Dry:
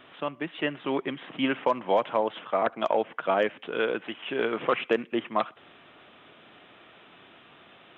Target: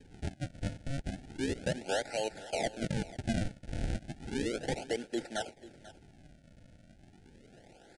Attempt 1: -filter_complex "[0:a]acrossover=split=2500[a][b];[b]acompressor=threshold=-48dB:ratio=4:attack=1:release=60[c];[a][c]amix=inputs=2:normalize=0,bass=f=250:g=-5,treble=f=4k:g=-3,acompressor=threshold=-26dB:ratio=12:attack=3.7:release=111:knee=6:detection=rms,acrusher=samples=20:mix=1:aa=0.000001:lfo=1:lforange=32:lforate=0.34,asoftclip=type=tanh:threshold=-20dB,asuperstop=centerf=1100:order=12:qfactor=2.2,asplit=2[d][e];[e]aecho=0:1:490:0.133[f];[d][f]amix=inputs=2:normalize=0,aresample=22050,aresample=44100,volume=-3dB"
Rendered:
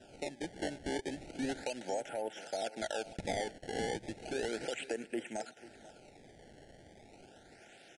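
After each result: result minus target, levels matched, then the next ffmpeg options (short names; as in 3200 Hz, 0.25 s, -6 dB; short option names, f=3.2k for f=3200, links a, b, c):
decimation with a swept rate: distortion -11 dB; compressor: peak gain reduction +5.5 dB
-filter_complex "[0:a]acrossover=split=2500[a][b];[b]acompressor=threshold=-48dB:ratio=4:attack=1:release=60[c];[a][c]amix=inputs=2:normalize=0,bass=f=250:g=-5,treble=f=4k:g=-3,acompressor=threshold=-26dB:ratio=12:attack=3.7:release=111:knee=6:detection=rms,acrusher=samples=62:mix=1:aa=0.000001:lfo=1:lforange=99.2:lforate=0.34,asoftclip=type=tanh:threshold=-20dB,asuperstop=centerf=1100:order=12:qfactor=2.2,asplit=2[d][e];[e]aecho=0:1:490:0.133[f];[d][f]amix=inputs=2:normalize=0,aresample=22050,aresample=44100,volume=-3dB"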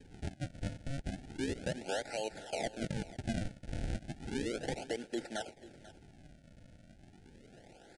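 compressor: peak gain reduction +5.5 dB
-filter_complex "[0:a]acrossover=split=2500[a][b];[b]acompressor=threshold=-48dB:ratio=4:attack=1:release=60[c];[a][c]amix=inputs=2:normalize=0,bass=f=250:g=-5,treble=f=4k:g=-3,acompressor=threshold=-19.5dB:ratio=12:attack=3.7:release=111:knee=6:detection=rms,acrusher=samples=62:mix=1:aa=0.000001:lfo=1:lforange=99.2:lforate=0.34,asoftclip=type=tanh:threshold=-20dB,asuperstop=centerf=1100:order=12:qfactor=2.2,asplit=2[d][e];[e]aecho=0:1:490:0.133[f];[d][f]amix=inputs=2:normalize=0,aresample=22050,aresample=44100,volume=-3dB"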